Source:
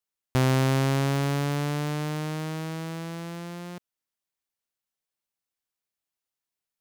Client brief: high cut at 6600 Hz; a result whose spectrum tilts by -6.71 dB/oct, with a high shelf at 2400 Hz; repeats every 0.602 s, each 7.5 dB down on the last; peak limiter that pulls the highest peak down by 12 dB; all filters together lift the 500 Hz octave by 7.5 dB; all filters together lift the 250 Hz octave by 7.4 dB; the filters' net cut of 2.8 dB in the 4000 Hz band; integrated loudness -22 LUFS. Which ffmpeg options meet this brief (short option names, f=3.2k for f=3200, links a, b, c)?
-af "lowpass=6.6k,equalizer=f=250:t=o:g=7.5,equalizer=f=500:t=o:g=7,highshelf=f=2.4k:g=3.5,equalizer=f=4k:t=o:g=-6.5,alimiter=limit=-19.5dB:level=0:latency=1,aecho=1:1:602|1204|1806|2408|3010:0.422|0.177|0.0744|0.0312|0.0131,volume=7dB"